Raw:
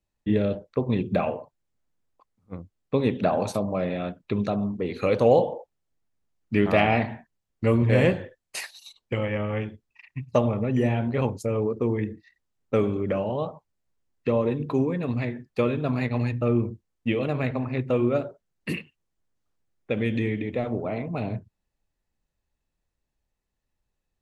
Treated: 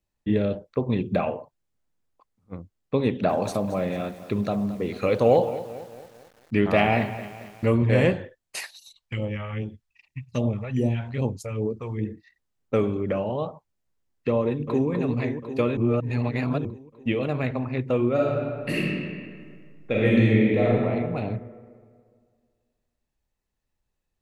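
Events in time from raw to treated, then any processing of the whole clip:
0:03.07–0:07.70: feedback echo at a low word length 222 ms, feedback 55%, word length 7 bits, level −14 dB
0:08.76–0:12.05: all-pass phaser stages 2, 2.5 Hz, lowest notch 260–1,800 Hz
0:14.42–0:14.89: delay throw 250 ms, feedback 75%, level −6.5 dB
0:15.77–0:16.65: reverse
0:18.14–0:20.73: thrown reverb, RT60 2 s, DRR −6 dB

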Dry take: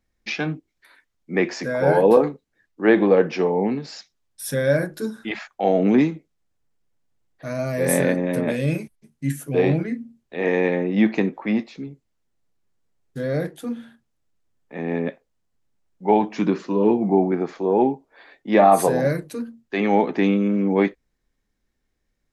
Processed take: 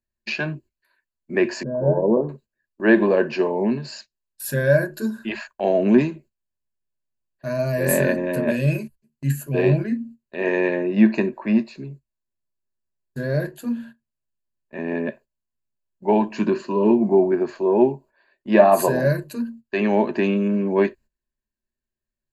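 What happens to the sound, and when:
0:01.63–0:02.29: Gaussian smoothing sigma 11 samples
0:10.82–0:13.34: notch filter 3,100 Hz, Q 7.8
whole clip: noise gate −43 dBFS, range −15 dB; EQ curve with evenly spaced ripples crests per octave 1.4, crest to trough 12 dB; level −1 dB

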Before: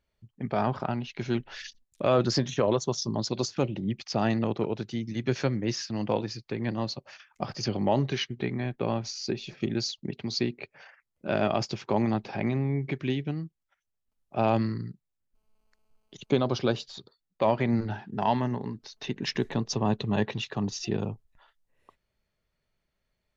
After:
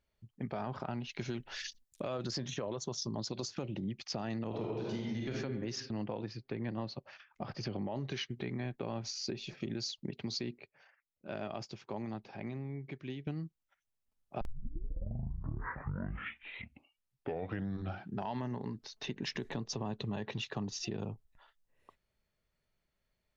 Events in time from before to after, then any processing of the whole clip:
0:01.09–0:02.31: high-shelf EQ 4,900 Hz +7 dB
0:04.47–0:05.30: thrown reverb, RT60 1.2 s, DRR −3 dB
0:05.80–0:07.96: high-frequency loss of the air 180 metres
0:10.58–0:13.27: clip gain −10 dB
0:14.41: tape start 3.90 s
whole clip: brickwall limiter −20.5 dBFS; downward compressor, threshold −31 dBFS; level −3 dB

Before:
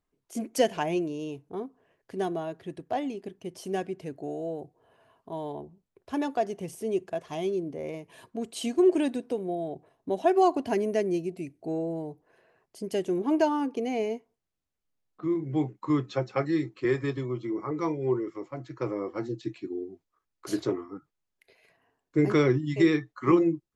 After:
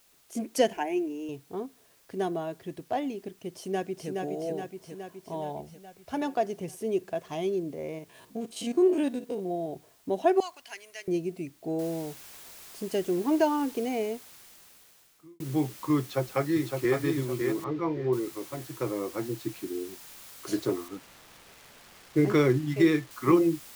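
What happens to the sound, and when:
0:00.73–0:01.29: phaser with its sweep stopped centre 810 Hz, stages 8
0:03.54–0:04.10: delay throw 420 ms, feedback 65%, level −3.5 dB
0:05.40–0:06.22: comb filter 1.4 ms, depth 48%
0:07.73–0:09.73: spectrum averaged block by block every 50 ms
0:10.40–0:11.08: flat-topped band-pass 5,400 Hz, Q 0.51
0:11.79: noise floor change −63 dB −48 dB
0:13.81–0:15.40: fade out
0:16.00–0:16.96: delay throw 560 ms, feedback 30%, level −4.5 dB
0:17.64–0:18.13: high-frequency loss of the air 250 metres
0:20.88–0:23.11: slack as between gear wheels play −40.5 dBFS

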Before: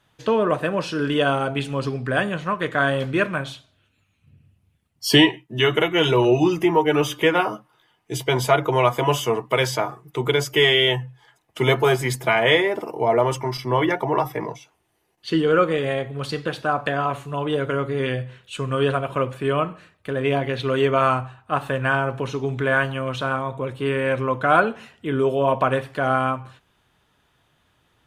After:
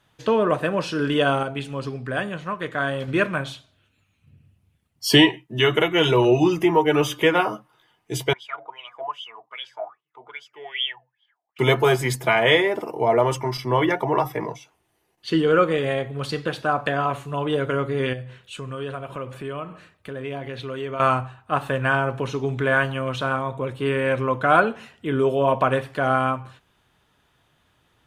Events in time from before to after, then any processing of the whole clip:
0:01.43–0:03.08: clip gain −4.5 dB
0:08.33–0:11.59: LFO wah 2.5 Hz 650–3,300 Hz, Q 13
0:18.13–0:21.00: downward compressor 2 to 1, threshold −35 dBFS

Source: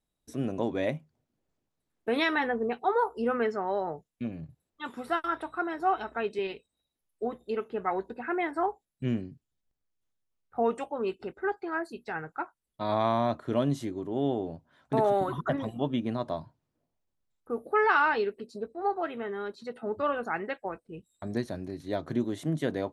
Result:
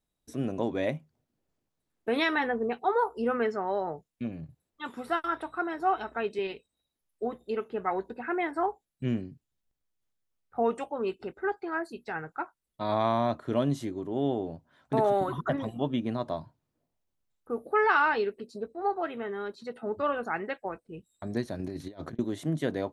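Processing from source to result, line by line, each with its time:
0:21.59–0:22.19: compressor whose output falls as the input rises −38 dBFS, ratio −0.5

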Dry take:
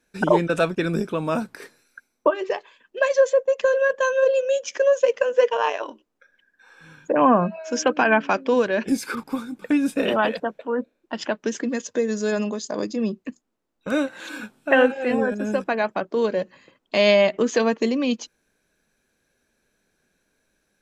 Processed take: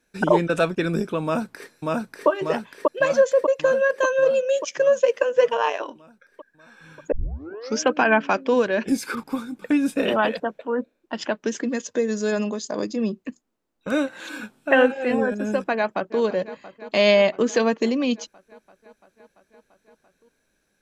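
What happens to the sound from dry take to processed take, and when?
0:01.23–0:02.28: delay throw 590 ms, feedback 65%, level −1 dB
0:07.12: tape start 0.68 s
0:15.76–0:16.20: delay throw 340 ms, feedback 80%, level −15 dB

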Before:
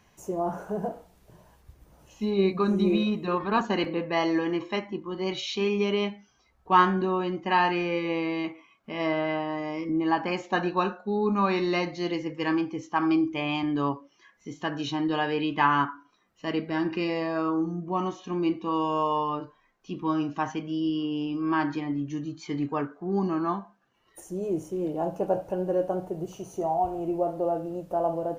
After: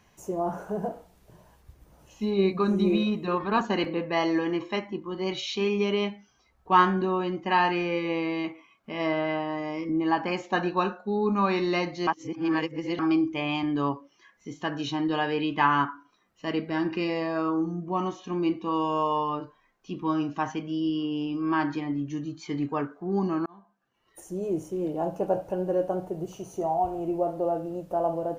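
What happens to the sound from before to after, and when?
0:12.07–0:12.99: reverse
0:23.46–0:24.29: fade in

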